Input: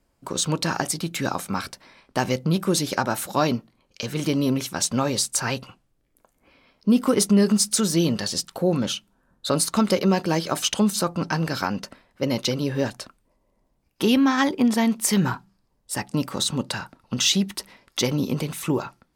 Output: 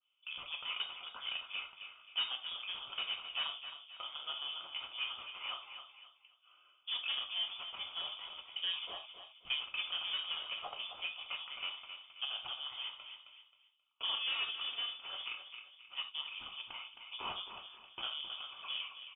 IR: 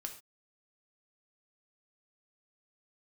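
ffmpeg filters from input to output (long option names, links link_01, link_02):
-filter_complex "[0:a]bandreject=frequency=620:width=17,bandreject=frequency=69.7:width_type=h:width=4,bandreject=frequency=139.4:width_type=h:width=4,bandreject=frequency=209.1:width_type=h:width=4,bandreject=frequency=278.8:width_type=h:width=4,bandreject=frequency=348.5:width_type=h:width=4,bandreject=frequency=418.2:width_type=h:width=4,bandreject=frequency=487.9:width_type=h:width=4,bandreject=frequency=557.6:width_type=h:width=4,bandreject=frequency=627.3:width_type=h:width=4,acontrast=42,aeval=exprs='clip(val(0),-1,0.0266)':channel_layout=same,asplit=3[link_01][link_02][link_03];[link_01]bandpass=frequency=730:width_type=q:width=8,volume=0dB[link_04];[link_02]bandpass=frequency=1090:width_type=q:width=8,volume=-6dB[link_05];[link_03]bandpass=frequency=2440:width_type=q:width=8,volume=-9dB[link_06];[link_04][link_05][link_06]amix=inputs=3:normalize=0,aeval=exprs='0.0501*(cos(1*acos(clip(val(0)/0.0501,-1,1)))-cos(1*PI/2))+0.00355*(cos(4*acos(clip(val(0)/0.0501,-1,1)))-cos(4*PI/2))+0.00562*(cos(6*acos(clip(val(0)/0.0501,-1,1)))-cos(6*PI/2))+0.00251*(cos(8*acos(clip(val(0)/0.0501,-1,1)))-cos(8*PI/2))':channel_layout=same,aecho=1:1:266|532|798:0.335|0.0938|0.0263[link_07];[1:a]atrim=start_sample=2205,afade=type=out:start_time=0.14:duration=0.01,atrim=end_sample=6615[link_08];[link_07][link_08]afir=irnorm=-1:irlink=0,lowpass=frequency=3100:width_type=q:width=0.5098,lowpass=frequency=3100:width_type=q:width=0.6013,lowpass=frequency=3100:width_type=q:width=0.9,lowpass=frequency=3100:width_type=q:width=2.563,afreqshift=-3700,adynamicequalizer=threshold=0.00316:dfrequency=1800:dqfactor=0.7:tfrequency=1800:tqfactor=0.7:attack=5:release=100:ratio=0.375:range=3:mode=cutabove:tftype=highshelf,volume=1dB"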